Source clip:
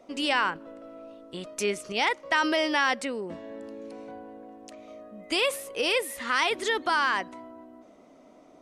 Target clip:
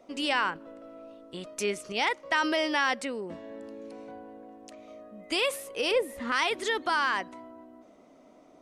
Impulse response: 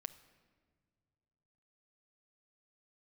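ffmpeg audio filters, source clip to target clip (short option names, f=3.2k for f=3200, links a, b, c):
-filter_complex "[0:a]asettb=1/sr,asplit=3[a][b][c];[a]atrim=end=5.914[d];[b]atrim=start=5.91:end=6.32,asetpts=PTS-STARTPTS,afade=t=in:d=0.004:c=qsin,afade=t=out:st=0.406:d=0.004:c=qsin,tiltshelf=f=970:g=9[e];[c]atrim=start=6.316[f];[d][e]acrossfade=d=0.004:c1=hsin:c2=qsin[g];[g][f]acrossfade=d=0.004:c1=qsin:c2=hsin,volume=-2dB"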